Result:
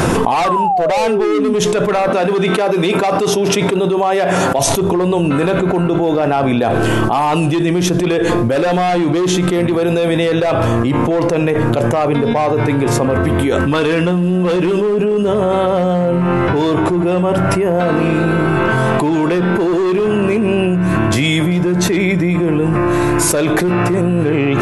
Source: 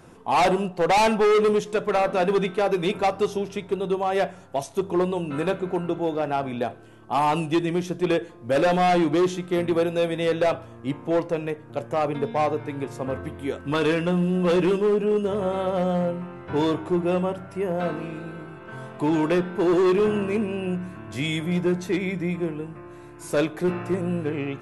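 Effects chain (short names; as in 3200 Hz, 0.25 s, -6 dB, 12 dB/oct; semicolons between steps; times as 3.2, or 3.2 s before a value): 0.44–1.54 painted sound fall 230–1200 Hz -19 dBFS; 2.09–4.59 HPF 180 Hz 12 dB/oct; fast leveller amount 100%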